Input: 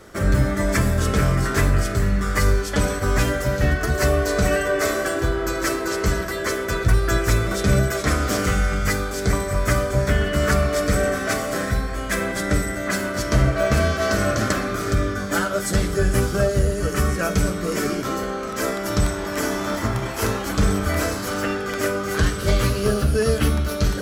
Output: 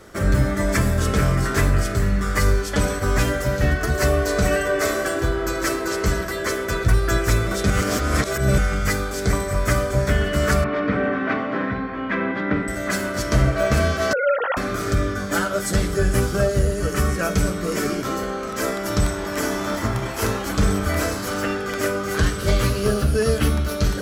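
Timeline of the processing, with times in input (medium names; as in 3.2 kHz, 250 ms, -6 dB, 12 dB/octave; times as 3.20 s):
7.70–8.58 s: reverse
10.64–12.68 s: cabinet simulation 140–2900 Hz, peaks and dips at 250 Hz +9 dB, 620 Hz -4 dB, 960 Hz +6 dB
14.13–14.57 s: formants replaced by sine waves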